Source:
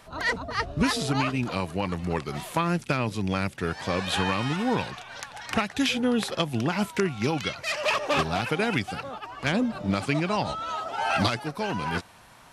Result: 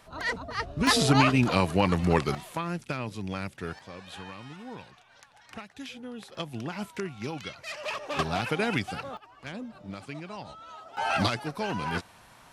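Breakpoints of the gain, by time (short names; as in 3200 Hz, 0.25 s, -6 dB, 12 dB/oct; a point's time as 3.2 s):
-4 dB
from 0.87 s +5 dB
from 2.35 s -7 dB
from 3.79 s -16.5 dB
from 6.35 s -9 dB
from 8.19 s -2 dB
from 9.17 s -14 dB
from 10.97 s -2 dB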